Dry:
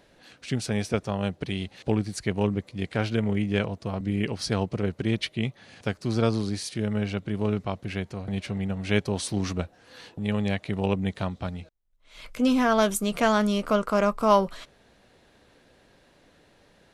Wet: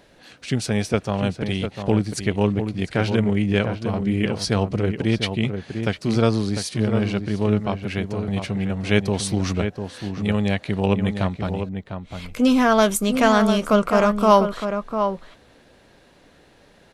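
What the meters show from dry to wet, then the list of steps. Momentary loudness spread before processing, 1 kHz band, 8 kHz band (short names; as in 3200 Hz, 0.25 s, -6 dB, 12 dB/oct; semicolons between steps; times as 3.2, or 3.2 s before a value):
11 LU, +5.5 dB, +5.0 dB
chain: outdoor echo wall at 120 m, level -7 dB; gain +5 dB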